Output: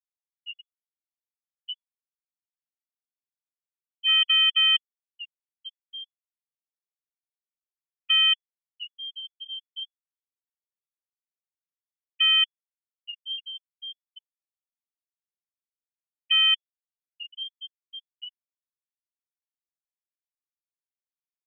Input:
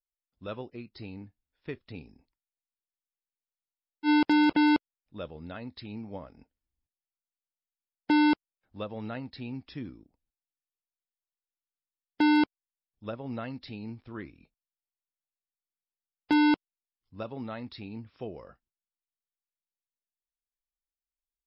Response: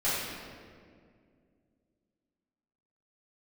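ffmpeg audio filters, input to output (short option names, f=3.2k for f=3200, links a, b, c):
-filter_complex "[0:a]highpass=f=50:p=1,afftfilt=real='re*gte(hypot(re,im),0.126)':imag='im*gte(hypot(re,im),0.126)':win_size=1024:overlap=0.75,equalizer=f=510:t=o:w=0.32:g=-3,asplit=2[a][b];[b]alimiter=level_in=2.5dB:limit=-24dB:level=0:latency=1:release=205,volume=-2.5dB,volume=2.5dB[c];[a][c]amix=inputs=2:normalize=0,lowpass=f=2.9k:t=q:w=0.5098,lowpass=f=2.9k:t=q:w=0.6013,lowpass=f=2.9k:t=q:w=0.9,lowpass=f=2.9k:t=q:w=2.563,afreqshift=-3400,volume=-1.5dB"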